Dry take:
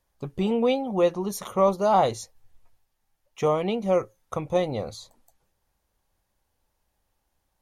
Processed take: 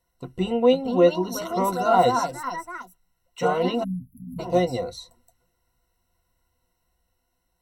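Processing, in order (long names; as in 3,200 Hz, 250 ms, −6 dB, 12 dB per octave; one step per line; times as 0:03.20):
delay with pitch and tempo change per echo 533 ms, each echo +3 semitones, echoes 3, each echo −6 dB
EQ curve with evenly spaced ripples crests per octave 2, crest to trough 17 dB
time-frequency box erased 0:03.84–0:04.39, 290–10,000 Hz
level −2 dB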